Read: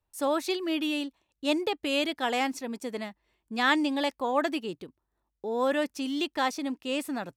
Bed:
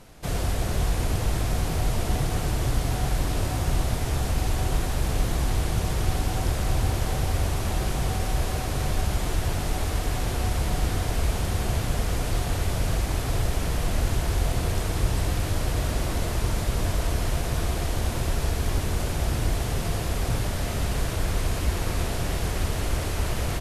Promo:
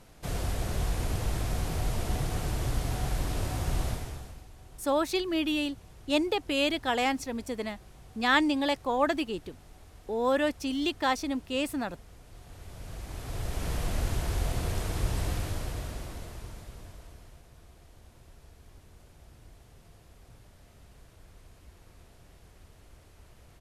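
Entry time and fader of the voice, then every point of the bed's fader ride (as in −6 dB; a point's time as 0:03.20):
4.65 s, +0.5 dB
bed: 0:03.89 −5.5 dB
0:04.48 −26 dB
0:12.26 −26 dB
0:13.70 −5.5 dB
0:15.33 −5.5 dB
0:17.50 −28.5 dB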